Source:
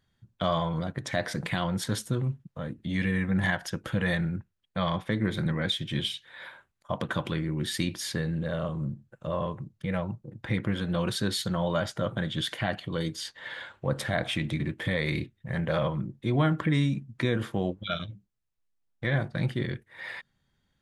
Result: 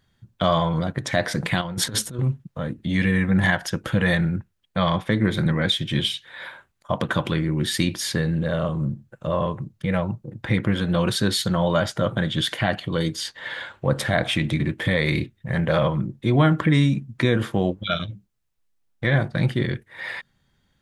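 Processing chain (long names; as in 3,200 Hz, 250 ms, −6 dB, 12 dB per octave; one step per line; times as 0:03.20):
0:01.61–0:02.19: compressor whose output falls as the input rises −33 dBFS, ratio −0.5
level +7 dB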